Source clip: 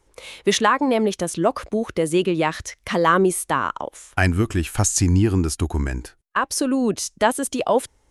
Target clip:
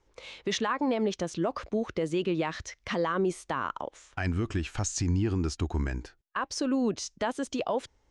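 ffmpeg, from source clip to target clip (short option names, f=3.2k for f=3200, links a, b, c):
-af "lowpass=f=6.4k:w=0.5412,lowpass=f=6.4k:w=1.3066,alimiter=limit=-13dB:level=0:latency=1:release=55,volume=-6.5dB"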